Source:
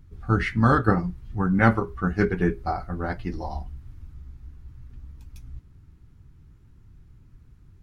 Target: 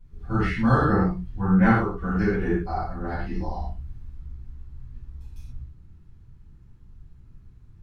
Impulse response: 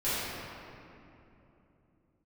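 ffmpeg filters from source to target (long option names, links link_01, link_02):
-filter_complex "[1:a]atrim=start_sample=2205,afade=type=out:start_time=0.31:duration=0.01,atrim=end_sample=14112,asetrate=79380,aresample=44100[link_01];[0:a][link_01]afir=irnorm=-1:irlink=0,volume=-6dB"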